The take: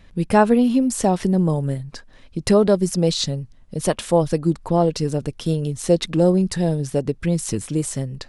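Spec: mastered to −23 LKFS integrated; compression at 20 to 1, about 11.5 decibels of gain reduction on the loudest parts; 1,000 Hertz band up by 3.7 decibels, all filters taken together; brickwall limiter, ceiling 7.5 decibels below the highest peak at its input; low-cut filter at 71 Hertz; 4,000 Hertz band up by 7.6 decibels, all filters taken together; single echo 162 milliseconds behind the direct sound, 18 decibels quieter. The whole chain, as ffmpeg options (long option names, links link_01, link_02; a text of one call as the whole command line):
ffmpeg -i in.wav -af "highpass=71,equalizer=frequency=1000:width_type=o:gain=4.5,equalizer=frequency=4000:width_type=o:gain=8.5,acompressor=threshold=-19dB:ratio=20,alimiter=limit=-15.5dB:level=0:latency=1,aecho=1:1:162:0.126,volume=3.5dB" out.wav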